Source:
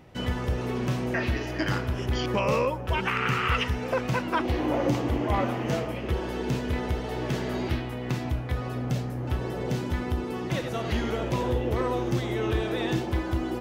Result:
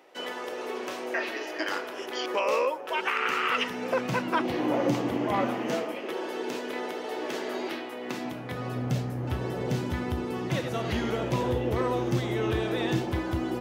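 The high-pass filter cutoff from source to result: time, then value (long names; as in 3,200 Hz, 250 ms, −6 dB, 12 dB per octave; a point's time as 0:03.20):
high-pass filter 24 dB per octave
0:03.14 360 Hz
0:04.17 140 Hz
0:05.36 140 Hz
0:06.06 300 Hz
0:07.97 300 Hz
0:08.94 78 Hz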